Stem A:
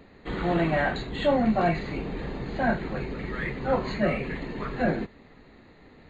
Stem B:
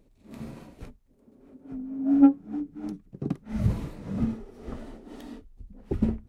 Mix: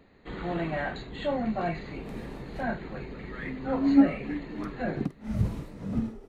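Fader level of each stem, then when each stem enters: -6.5, -2.0 dB; 0.00, 1.75 s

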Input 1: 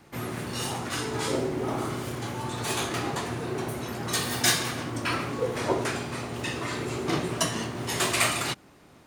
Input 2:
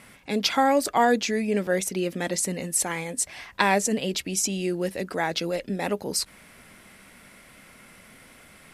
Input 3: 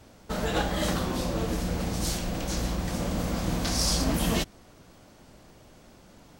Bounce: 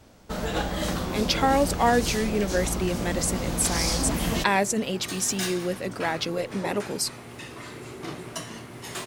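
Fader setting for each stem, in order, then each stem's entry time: -8.5, -1.0, -0.5 dB; 0.95, 0.85, 0.00 s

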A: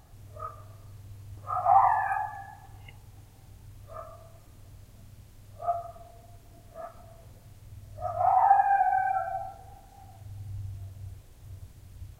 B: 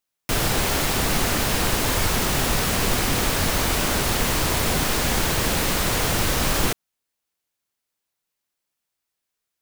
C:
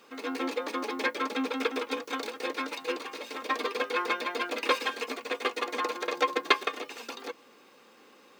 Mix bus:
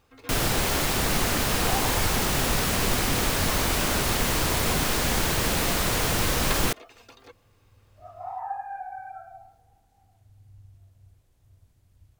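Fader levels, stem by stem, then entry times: -12.5, -2.5, -11.0 dB; 0.00, 0.00, 0.00 s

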